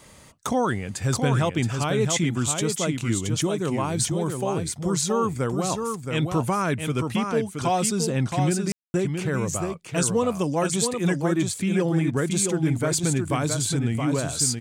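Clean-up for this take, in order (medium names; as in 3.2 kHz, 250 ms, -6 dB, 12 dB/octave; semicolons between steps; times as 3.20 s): room tone fill 8.72–8.94 s; inverse comb 672 ms -5.5 dB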